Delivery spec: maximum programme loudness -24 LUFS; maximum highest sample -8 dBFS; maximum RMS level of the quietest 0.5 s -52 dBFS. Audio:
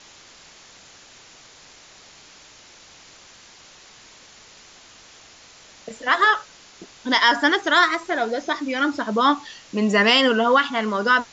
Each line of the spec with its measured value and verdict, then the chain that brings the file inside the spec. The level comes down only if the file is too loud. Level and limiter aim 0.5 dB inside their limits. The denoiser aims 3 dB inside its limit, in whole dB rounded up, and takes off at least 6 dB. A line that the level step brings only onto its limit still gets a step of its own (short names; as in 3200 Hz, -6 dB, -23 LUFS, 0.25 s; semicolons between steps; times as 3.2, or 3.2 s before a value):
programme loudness -19.5 LUFS: fail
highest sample -5.5 dBFS: fail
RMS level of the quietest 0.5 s -48 dBFS: fail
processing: gain -5 dB